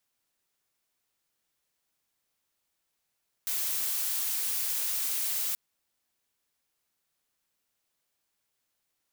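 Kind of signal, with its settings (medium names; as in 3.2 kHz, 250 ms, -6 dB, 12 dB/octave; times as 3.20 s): noise blue, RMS -30.5 dBFS 2.08 s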